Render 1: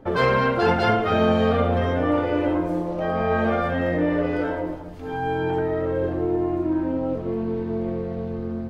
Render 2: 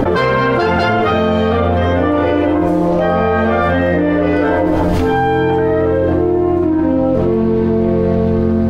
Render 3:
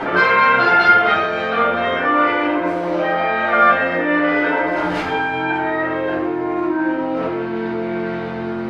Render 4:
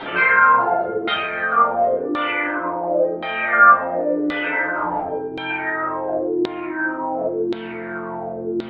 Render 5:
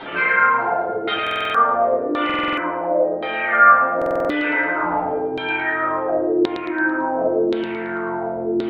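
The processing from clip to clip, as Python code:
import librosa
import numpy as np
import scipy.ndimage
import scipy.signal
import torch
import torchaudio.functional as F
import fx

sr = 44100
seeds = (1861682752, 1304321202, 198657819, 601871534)

y1 = fx.env_flatten(x, sr, amount_pct=100)
y1 = F.gain(torch.from_numpy(y1), 3.5).numpy()
y2 = fx.bandpass_q(y1, sr, hz=2000.0, q=0.91)
y2 = fx.room_shoebox(y2, sr, seeds[0], volume_m3=520.0, walls='furnished', distance_m=7.5)
y2 = F.gain(torch.from_numpy(y2), -4.5).numpy()
y3 = fx.filter_lfo_lowpass(y2, sr, shape='saw_down', hz=0.93, low_hz=340.0, high_hz=3800.0, q=5.9)
y3 = F.gain(torch.from_numpy(y3), -8.5).numpy()
y4 = fx.echo_feedback(y3, sr, ms=111, feedback_pct=40, wet_db=-7.0)
y4 = fx.rider(y4, sr, range_db=3, speed_s=2.0)
y4 = fx.buffer_glitch(y4, sr, at_s=(1.22, 2.25, 3.97), block=2048, repeats=6)
y4 = F.gain(torch.from_numpy(y4), -1.0).numpy()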